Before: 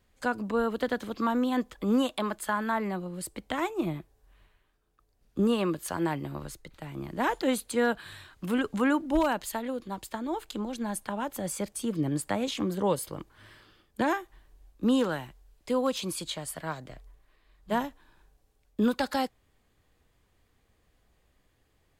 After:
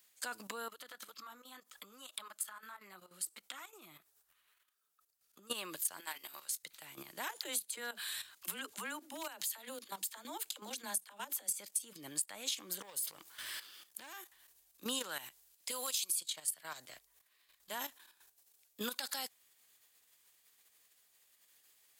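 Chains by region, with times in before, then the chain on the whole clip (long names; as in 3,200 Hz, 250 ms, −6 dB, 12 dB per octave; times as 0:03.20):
0:00.68–0:05.50: parametric band 1,300 Hz +9 dB 0.32 octaves + downward compressor, threshold −40 dBFS + flanger 2 Hz, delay 0.5 ms, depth 5.6 ms, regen −32%
0:06.00–0:06.64: high-pass filter 1,300 Hz 6 dB per octave + double-tracking delay 19 ms −8 dB
0:07.28–0:11.58: downward compressor, threshold −32 dBFS + all-pass dispersion lows, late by 59 ms, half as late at 330 Hz
0:12.81–0:14.21: downward compressor 4 to 1, threshold −42 dBFS + leveller curve on the samples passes 2
0:15.71–0:16.20: downward compressor, threshold −28 dBFS + spectral tilt +2.5 dB per octave
whole clip: output level in coarse steps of 12 dB; first difference; downward compressor 4 to 1, threshold −50 dBFS; level +14.5 dB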